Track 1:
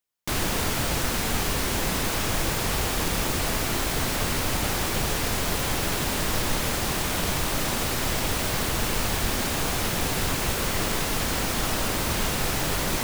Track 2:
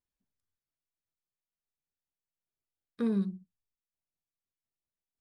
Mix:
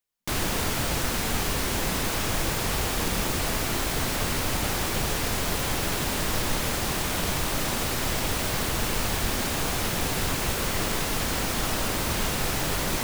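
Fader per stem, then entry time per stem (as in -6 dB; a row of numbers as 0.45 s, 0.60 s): -1.0 dB, -9.5 dB; 0.00 s, 0.00 s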